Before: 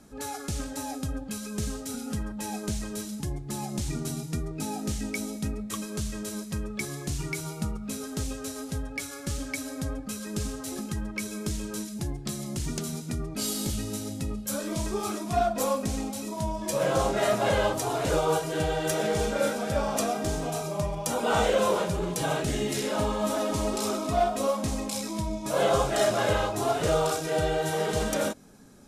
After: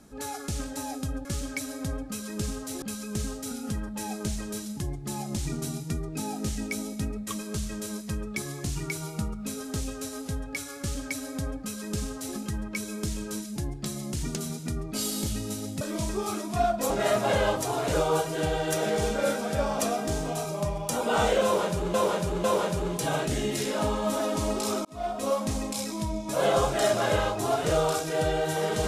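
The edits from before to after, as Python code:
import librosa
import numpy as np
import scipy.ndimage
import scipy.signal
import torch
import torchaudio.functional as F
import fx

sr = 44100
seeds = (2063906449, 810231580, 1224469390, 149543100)

y = fx.edit(x, sr, fx.duplicate(start_s=9.22, length_s=1.57, to_s=1.25),
    fx.cut(start_s=14.24, length_s=0.34),
    fx.cut(start_s=15.67, length_s=1.4),
    fx.repeat(start_s=21.61, length_s=0.5, count=3),
    fx.fade_in_span(start_s=24.02, length_s=0.48), tone=tone)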